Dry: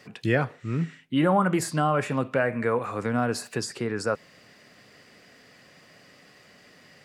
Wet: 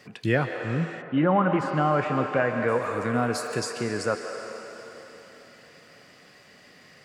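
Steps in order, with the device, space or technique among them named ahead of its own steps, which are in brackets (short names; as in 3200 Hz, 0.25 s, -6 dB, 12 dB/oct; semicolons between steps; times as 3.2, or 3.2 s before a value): filtered reverb send (on a send: HPF 410 Hz 12 dB/oct + LPF 8800 Hz 12 dB/oct + reverb RT60 3.8 s, pre-delay 0.115 s, DRR 4.5 dB); 1.01–2.67 on the sum: LPF 1900 Hz -> 4000 Hz 12 dB/oct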